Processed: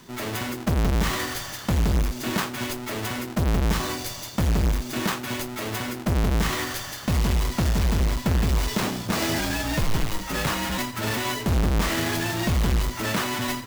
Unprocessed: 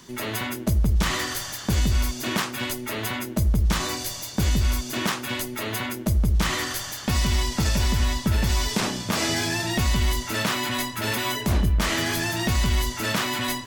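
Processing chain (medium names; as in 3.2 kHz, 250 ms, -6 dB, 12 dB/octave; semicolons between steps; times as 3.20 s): square wave that keeps the level; peaking EQ 9.6 kHz -2 dB 0.33 oct; 9.38–10.78 s: frequency shift -55 Hz; trim -5 dB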